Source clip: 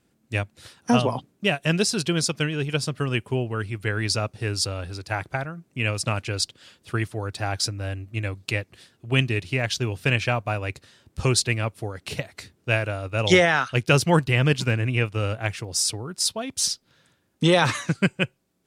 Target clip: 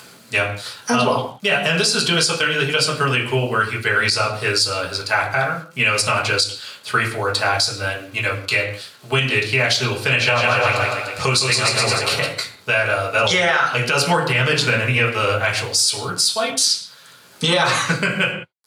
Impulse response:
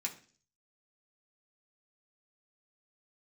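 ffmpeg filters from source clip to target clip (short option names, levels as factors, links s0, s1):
-filter_complex "[0:a]asettb=1/sr,asplit=3[s0][s1][s2];[s0]atrim=end=10.104[s3];[s1]atrim=start=10.1:end=12.26,asetpts=PTS-STARTPTS,afade=t=in:d=0.004:c=qsin,afade=t=out:st=2.156:d=0.004:c=qsin,aecho=1:1:160|296|411.6|509.9|593.4:0.631|0.398|0.251|0.158|0.1,atrim=end_sample=95256[s4];[s2]atrim=start=12.256[s5];[s3][s4]acrossfade=d=0.004:c1=hsin:c2=qsin[s6];[s6][s5]acrossfade=d=0.004:c1=qsin:c2=hsin,acompressor=mode=upward:threshold=0.0112:ratio=2.5,acrusher=bits=9:mix=0:aa=0.000001,highpass=f=570:p=1[s7];[1:a]atrim=start_sample=2205,afade=t=out:st=0.17:d=0.01,atrim=end_sample=7938,asetrate=26019,aresample=44100[s8];[s7][s8]afir=irnorm=-1:irlink=0,acompressor=threshold=0.0794:ratio=6,alimiter=level_in=6.31:limit=0.891:release=50:level=0:latency=1,volume=0.531"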